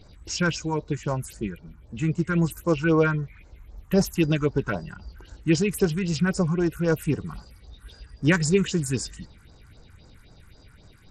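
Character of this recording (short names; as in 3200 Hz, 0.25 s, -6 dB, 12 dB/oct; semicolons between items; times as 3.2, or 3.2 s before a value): phasing stages 4, 3.8 Hz, lowest notch 550–3100 Hz; SBC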